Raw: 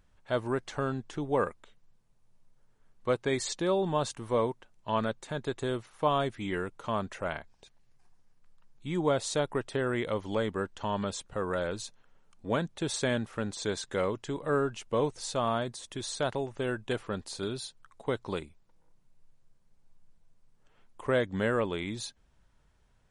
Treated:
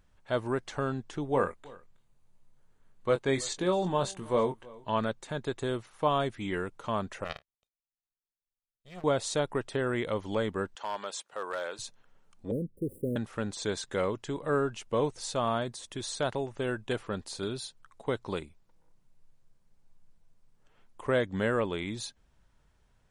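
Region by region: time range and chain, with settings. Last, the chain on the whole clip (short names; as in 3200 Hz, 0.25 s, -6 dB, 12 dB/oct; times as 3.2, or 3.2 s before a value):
1.32–4.9 notch 5400 Hz, Q 8.9 + doubler 22 ms -8 dB + echo 0.323 s -22 dB
7.24–9.04 minimum comb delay 1.6 ms + power-law curve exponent 2
10.75–11.79 HPF 580 Hz + hard clip -27 dBFS
12.51–13.16 median filter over 15 samples + Chebyshev band-stop 510–9000 Hz, order 5
whole clip: dry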